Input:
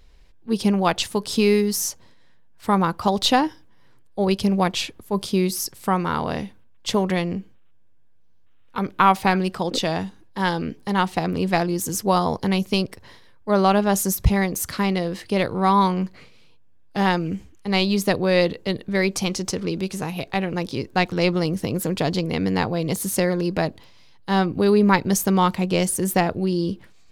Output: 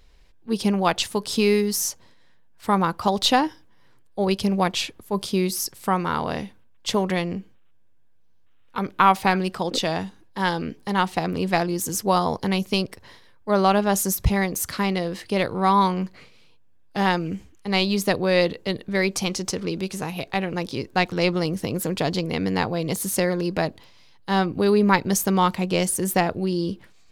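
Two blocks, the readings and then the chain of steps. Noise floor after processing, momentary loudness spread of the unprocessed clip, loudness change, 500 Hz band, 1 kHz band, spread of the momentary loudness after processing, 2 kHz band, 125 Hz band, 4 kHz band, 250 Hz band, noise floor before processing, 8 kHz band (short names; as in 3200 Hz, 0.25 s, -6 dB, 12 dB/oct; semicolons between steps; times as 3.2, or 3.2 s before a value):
-52 dBFS, 10 LU, -1.0 dB, -1.0 dB, -0.5 dB, 10 LU, 0.0 dB, -2.5 dB, 0.0 dB, -2.0 dB, -49 dBFS, 0.0 dB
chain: low shelf 360 Hz -3 dB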